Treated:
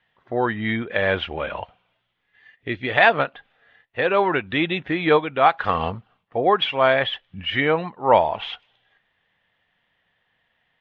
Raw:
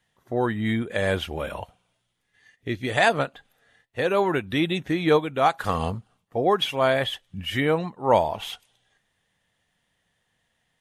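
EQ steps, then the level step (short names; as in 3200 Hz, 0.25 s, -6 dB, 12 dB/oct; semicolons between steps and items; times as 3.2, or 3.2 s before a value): LPF 3200 Hz 24 dB/oct; low shelf 470 Hz -9 dB; +6.5 dB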